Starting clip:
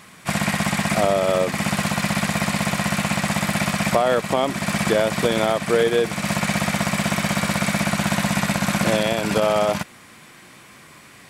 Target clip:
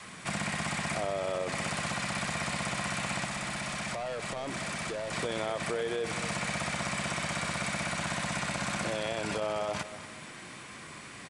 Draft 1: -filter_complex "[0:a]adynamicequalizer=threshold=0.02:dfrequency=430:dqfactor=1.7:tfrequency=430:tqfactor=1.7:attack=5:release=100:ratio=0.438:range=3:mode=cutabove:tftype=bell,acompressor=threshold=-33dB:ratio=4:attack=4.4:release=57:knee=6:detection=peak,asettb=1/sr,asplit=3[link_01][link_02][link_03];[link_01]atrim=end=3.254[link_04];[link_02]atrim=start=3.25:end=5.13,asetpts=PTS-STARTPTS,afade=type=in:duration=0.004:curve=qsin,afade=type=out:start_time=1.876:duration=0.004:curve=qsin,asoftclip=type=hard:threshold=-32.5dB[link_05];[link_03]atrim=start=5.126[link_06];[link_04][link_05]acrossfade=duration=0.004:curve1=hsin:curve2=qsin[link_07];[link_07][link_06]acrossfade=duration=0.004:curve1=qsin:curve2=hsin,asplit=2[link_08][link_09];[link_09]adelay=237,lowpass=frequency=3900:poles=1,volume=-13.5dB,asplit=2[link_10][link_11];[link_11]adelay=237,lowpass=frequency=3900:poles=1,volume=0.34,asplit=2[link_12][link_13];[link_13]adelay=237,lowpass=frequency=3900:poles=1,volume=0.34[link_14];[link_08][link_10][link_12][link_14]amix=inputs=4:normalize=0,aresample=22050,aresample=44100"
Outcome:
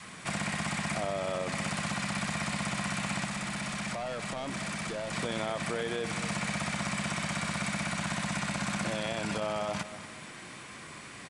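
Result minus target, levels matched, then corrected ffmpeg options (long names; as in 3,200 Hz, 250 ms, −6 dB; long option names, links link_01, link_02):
250 Hz band +3.0 dB
-filter_complex "[0:a]adynamicequalizer=threshold=0.02:dfrequency=200:dqfactor=1.7:tfrequency=200:tqfactor=1.7:attack=5:release=100:ratio=0.438:range=3:mode=cutabove:tftype=bell,acompressor=threshold=-33dB:ratio=4:attack=4.4:release=57:knee=6:detection=peak,asettb=1/sr,asplit=3[link_01][link_02][link_03];[link_01]atrim=end=3.254[link_04];[link_02]atrim=start=3.25:end=5.13,asetpts=PTS-STARTPTS,afade=type=in:duration=0.004:curve=qsin,afade=type=out:start_time=1.876:duration=0.004:curve=qsin,asoftclip=type=hard:threshold=-32.5dB[link_05];[link_03]atrim=start=5.126[link_06];[link_04][link_05]acrossfade=duration=0.004:curve1=hsin:curve2=qsin[link_07];[link_07][link_06]acrossfade=duration=0.004:curve1=qsin:curve2=hsin,asplit=2[link_08][link_09];[link_09]adelay=237,lowpass=frequency=3900:poles=1,volume=-13.5dB,asplit=2[link_10][link_11];[link_11]adelay=237,lowpass=frequency=3900:poles=1,volume=0.34,asplit=2[link_12][link_13];[link_13]adelay=237,lowpass=frequency=3900:poles=1,volume=0.34[link_14];[link_08][link_10][link_12][link_14]amix=inputs=4:normalize=0,aresample=22050,aresample=44100"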